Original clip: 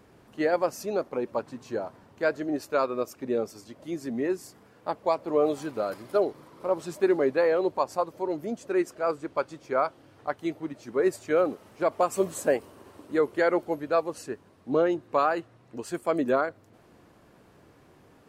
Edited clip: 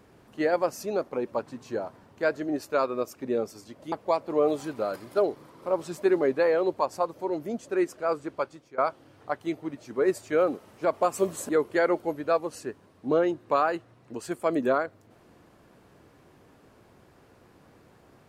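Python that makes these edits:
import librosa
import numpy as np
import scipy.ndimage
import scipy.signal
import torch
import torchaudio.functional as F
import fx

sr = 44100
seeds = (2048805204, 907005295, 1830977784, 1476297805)

y = fx.edit(x, sr, fx.cut(start_s=3.92, length_s=0.98),
    fx.fade_out_to(start_s=9.3, length_s=0.46, floor_db=-18.5),
    fx.cut(start_s=12.47, length_s=0.65), tone=tone)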